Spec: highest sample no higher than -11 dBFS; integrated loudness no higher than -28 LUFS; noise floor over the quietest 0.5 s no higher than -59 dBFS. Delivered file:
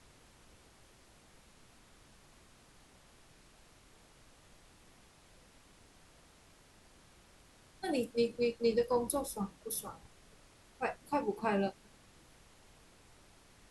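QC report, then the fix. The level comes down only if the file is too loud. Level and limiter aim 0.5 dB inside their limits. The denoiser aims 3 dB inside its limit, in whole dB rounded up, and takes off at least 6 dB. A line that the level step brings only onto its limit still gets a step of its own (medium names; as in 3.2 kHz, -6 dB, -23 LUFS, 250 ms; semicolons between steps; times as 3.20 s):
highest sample -18.5 dBFS: pass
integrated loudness -35.0 LUFS: pass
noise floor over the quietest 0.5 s -62 dBFS: pass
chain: none needed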